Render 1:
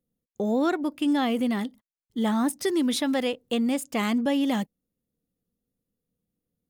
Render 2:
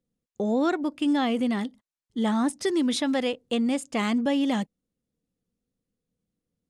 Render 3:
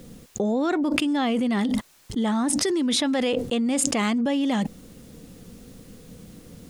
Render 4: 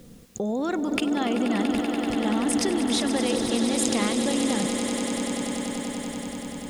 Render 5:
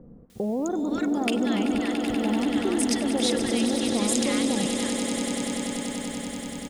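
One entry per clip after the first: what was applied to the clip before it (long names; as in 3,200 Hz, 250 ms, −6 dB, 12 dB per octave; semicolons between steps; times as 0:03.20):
low-pass filter 9,400 Hz 24 dB per octave
envelope flattener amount 100%; level −2 dB
echo that builds up and dies away 96 ms, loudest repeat 8, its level −10.5 dB; level −3.5 dB
multiband delay without the direct sound lows, highs 300 ms, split 1,100 Hz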